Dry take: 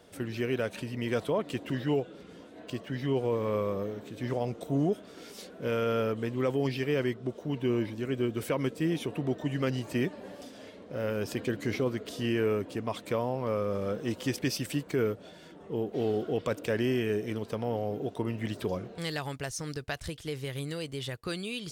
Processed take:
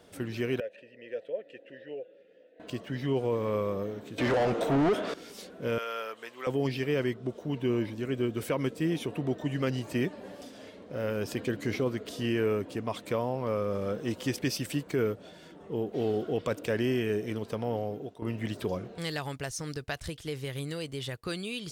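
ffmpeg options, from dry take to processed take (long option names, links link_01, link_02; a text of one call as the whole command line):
ffmpeg -i in.wav -filter_complex "[0:a]asettb=1/sr,asplit=3[link_01][link_02][link_03];[link_01]atrim=end=0.604[link_04];[link_02]atrim=start=0.6:end=2.6,asetpts=PTS-STARTPTS,afade=type=in:duration=0.004:curve=qsin,afade=type=out:start_time=1.996:duration=0.004:curve=qsin,asplit=3[link_05][link_06][link_07];[link_05]bandpass=frequency=530:width_type=q:width=8,volume=0dB[link_08];[link_06]bandpass=frequency=1840:width_type=q:width=8,volume=-6dB[link_09];[link_07]bandpass=frequency=2480:width_type=q:width=8,volume=-9dB[link_10];[link_08][link_09][link_10]amix=inputs=3:normalize=0[link_11];[link_03]atrim=start=2.596[link_12];[link_04][link_11]acrossfade=duration=0.004:curve1=hsin:curve2=qsin[link_13];[link_13][link_12]acrossfade=duration=0.004:curve1=qsin:curve2=hsin,asettb=1/sr,asplit=3[link_14][link_15][link_16];[link_14]atrim=end=4.184[link_17];[link_15]atrim=start=4.18:end=5.14,asetpts=PTS-STARTPTS,afade=type=in:duration=0.004:curve=qsin,afade=type=out:start_time=0.956:duration=0.004:curve=qsin,asplit=2[link_18][link_19];[link_19]highpass=frequency=720:poles=1,volume=29dB,asoftclip=type=tanh:threshold=-18dB[link_20];[link_18][link_20]amix=inputs=2:normalize=0,lowpass=frequency=1800:poles=1,volume=-6dB[link_21];[link_16]atrim=start=5.136[link_22];[link_17][link_21]acrossfade=duration=0.004:curve1=hsin:curve2=qsin[link_23];[link_23][link_22]acrossfade=duration=0.004:curve1=qsin:curve2=hsin,asettb=1/sr,asplit=3[link_24][link_25][link_26];[link_24]atrim=end=5.784[link_27];[link_25]atrim=start=5.78:end=6.47,asetpts=PTS-STARTPTS,afade=type=in:duration=0.004:curve=qsin,afade=type=out:start_time=0.686:duration=0.004:curve=qsin,highpass=850[link_28];[link_26]atrim=start=6.466[link_29];[link_27][link_28]acrossfade=duration=0.004:curve1=hsin:curve2=qsin[link_30];[link_30][link_29]acrossfade=duration=0.004:curve1=qsin:curve2=hsin,asplit=2[link_31][link_32];[link_31]atrim=end=18.22,asetpts=PTS-STARTPTS,afade=type=out:start_time=17.79:duration=0.43:silence=0.188365[link_33];[link_32]atrim=start=18.22,asetpts=PTS-STARTPTS,afade=type=in:duration=0.004:curve=hsin:silence=0.188365[link_34];[link_33][link_34]concat=n=2:v=0:a=1" out.wav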